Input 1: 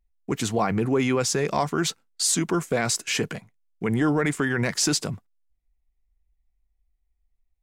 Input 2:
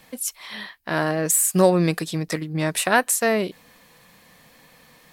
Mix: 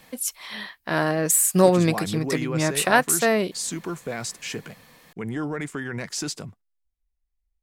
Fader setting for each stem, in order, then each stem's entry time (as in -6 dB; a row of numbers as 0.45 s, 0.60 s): -7.0 dB, 0.0 dB; 1.35 s, 0.00 s